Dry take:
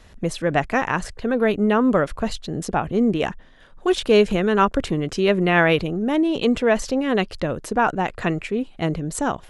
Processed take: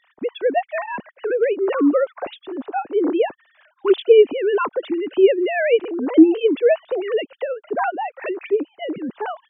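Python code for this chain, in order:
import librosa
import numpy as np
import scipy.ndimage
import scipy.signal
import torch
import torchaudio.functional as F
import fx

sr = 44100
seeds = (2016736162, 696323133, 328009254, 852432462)

y = fx.sine_speech(x, sr)
y = fx.dynamic_eq(y, sr, hz=1800.0, q=1.1, threshold_db=-37.0, ratio=4.0, max_db=-6)
y = F.gain(torch.from_numpy(y), 2.0).numpy()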